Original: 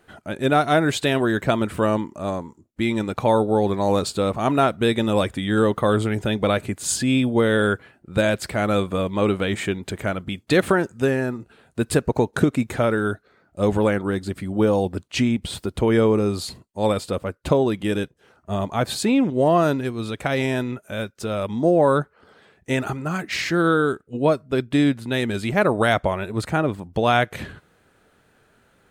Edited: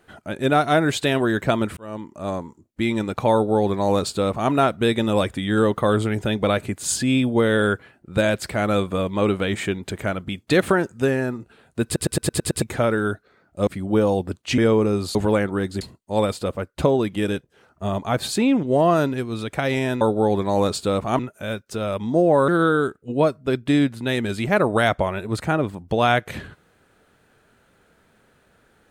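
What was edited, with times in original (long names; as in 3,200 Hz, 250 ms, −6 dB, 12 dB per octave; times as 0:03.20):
0:01.77–0:02.35: fade in
0:03.33–0:04.51: duplicate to 0:20.68
0:11.85: stutter in place 0.11 s, 7 plays
0:13.67–0:14.33: move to 0:16.48
0:15.24–0:15.91: remove
0:21.97–0:23.53: remove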